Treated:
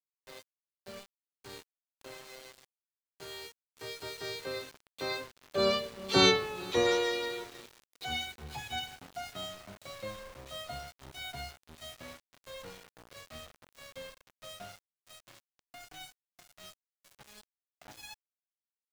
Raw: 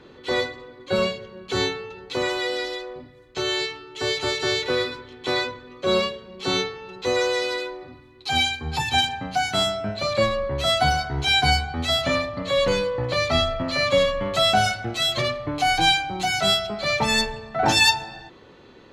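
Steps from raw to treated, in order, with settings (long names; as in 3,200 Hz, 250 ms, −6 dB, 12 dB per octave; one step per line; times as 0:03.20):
source passing by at 0:06.31, 17 m/s, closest 4.9 metres
echo machine with several playback heads 229 ms, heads second and third, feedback 44%, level −23 dB
centre clipping without the shift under −46.5 dBFS
level +1.5 dB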